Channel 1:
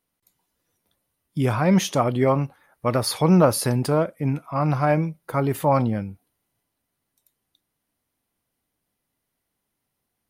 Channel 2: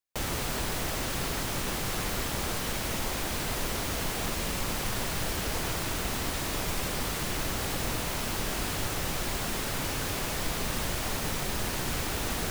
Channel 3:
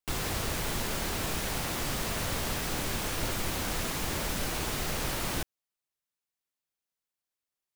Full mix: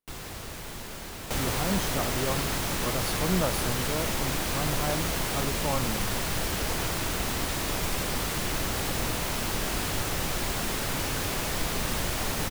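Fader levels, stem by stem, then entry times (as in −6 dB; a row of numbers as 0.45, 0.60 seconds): −12.0, +2.0, −7.0 decibels; 0.00, 1.15, 0.00 seconds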